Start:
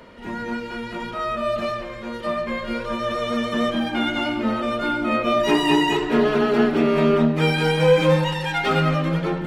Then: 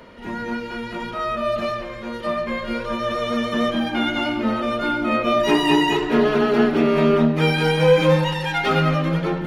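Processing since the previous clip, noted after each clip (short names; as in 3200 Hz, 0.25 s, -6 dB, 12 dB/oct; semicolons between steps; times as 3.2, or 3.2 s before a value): notch 7800 Hz, Q 8.1; gain +1 dB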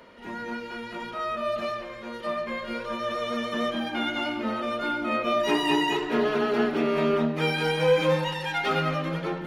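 low shelf 180 Hz -9.5 dB; gain -5 dB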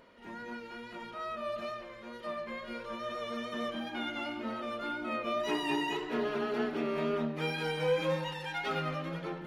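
wow and flutter 25 cents; gain -8.5 dB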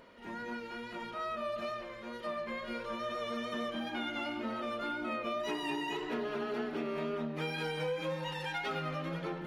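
compressor 5:1, threshold -35 dBFS, peak gain reduction 9.5 dB; gain +2 dB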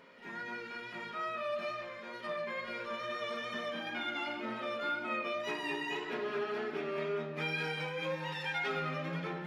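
reverb RT60 0.50 s, pre-delay 3 ms, DRR 4.5 dB; gain -4.5 dB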